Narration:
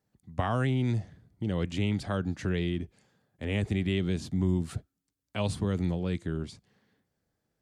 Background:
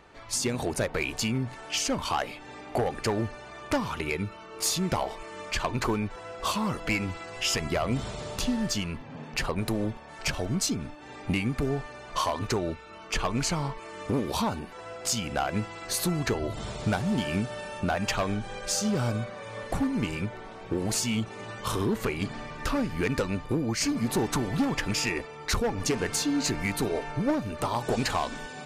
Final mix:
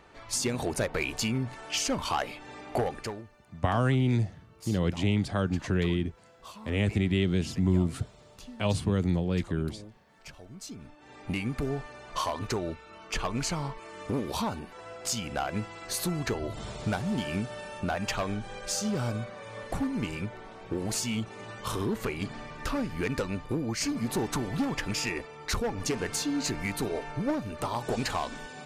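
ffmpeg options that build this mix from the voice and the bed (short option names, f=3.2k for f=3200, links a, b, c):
-filter_complex "[0:a]adelay=3250,volume=2.5dB[a];[1:a]volume=14dB,afade=t=out:st=2.8:d=0.43:silence=0.141254,afade=t=in:st=10.57:d=0.95:silence=0.177828[b];[a][b]amix=inputs=2:normalize=0"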